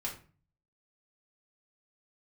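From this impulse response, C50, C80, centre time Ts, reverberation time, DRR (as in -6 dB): 8.5 dB, 14.0 dB, 20 ms, 0.40 s, -4.0 dB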